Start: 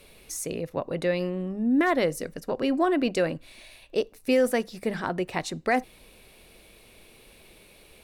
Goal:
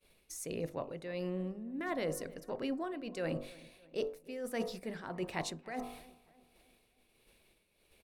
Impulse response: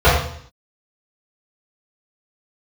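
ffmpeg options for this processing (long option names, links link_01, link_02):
-filter_complex "[0:a]bandreject=frequency=48.77:width_type=h:width=4,bandreject=frequency=97.54:width_type=h:width=4,bandreject=frequency=146.31:width_type=h:width=4,bandreject=frequency=195.08:width_type=h:width=4,bandreject=frequency=243.85:width_type=h:width=4,bandreject=frequency=292.62:width_type=h:width=4,bandreject=frequency=341.39:width_type=h:width=4,bandreject=frequency=390.16:width_type=h:width=4,bandreject=frequency=438.93:width_type=h:width=4,bandreject=frequency=487.7:width_type=h:width=4,bandreject=frequency=536.47:width_type=h:width=4,bandreject=frequency=585.24:width_type=h:width=4,bandreject=frequency=634.01:width_type=h:width=4,bandreject=frequency=682.78:width_type=h:width=4,bandreject=frequency=731.55:width_type=h:width=4,bandreject=frequency=780.32:width_type=h:width=4,bandreject=frequency=829.09:width_type=h:width=4,bandreject=frequency=877.86:width_type=h:width=4,bandreject=frequency=926.63:width_type=h:width=4,bandreject=frequency=975.4:width_type=h:width=4,bandreject=frequency=1024.17:width_type=h:width=4,bandreject=frequency=1072.94:width_type=h:width=4,bandreject=frequency=1121.71:width_type=h:width=4,bandreject=frequency=1170.48:width_type=h:width=4,bandreject=frequency=1219.25:width_type=h:width=4,bandreject=frequency=1268.02:width_type=h:width=4,bandreject=frequency=1316.79:width_type=h:width=4,agate=range=-33dB:threshold=-43dB:ratio=3:detection=peak,areverse,acompressor=threshold=-33dB:ratio=6,areverse,tremolo=f=1.5:d=0.59,asplit=2[link_01][link_02];[link_02]adelay=301,lowpass=frequency=2300:poles=1,volume=-20dB,asplit=2[link_03][link_04];[link_04]adelay=301,lowpass=frequency=2300:poles=1,volume=0.49,asplit=2[link_05][link_06];[link_06]adelay=301,lowpass=frequency=2300:poles=1,volume=0.49,asplit=2[link_07][link_08];[link_08]adelay=301,lowpass=frequency=2300:poles=1,volume=0.49[link_09];[link_01][link_03][link_05][link_07][link_09]amix=inputs=5:normalize=0"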